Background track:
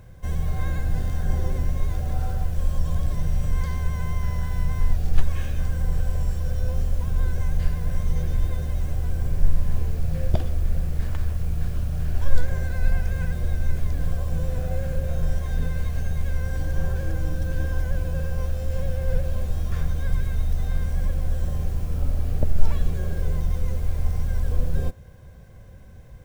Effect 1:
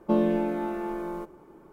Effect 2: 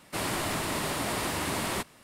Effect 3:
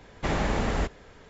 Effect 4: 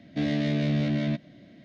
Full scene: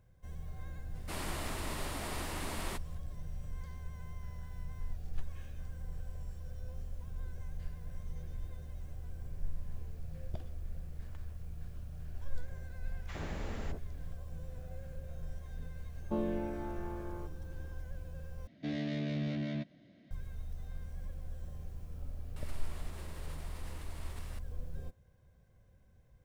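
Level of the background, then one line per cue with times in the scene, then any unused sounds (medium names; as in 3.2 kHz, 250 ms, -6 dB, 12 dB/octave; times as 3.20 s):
background track -19 dB
0.95 s: add 2 -10 dB
12.85 s: add 3 -15 dB + bands offset in time highs, lows 60 ms, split 950 Hz
16.02 s: add 1 -11.5 dB
18.47 s: replace with 4 -10 dB
22.36 s: add 2 -10 dB + compressor with a negative ratio -43 dBFS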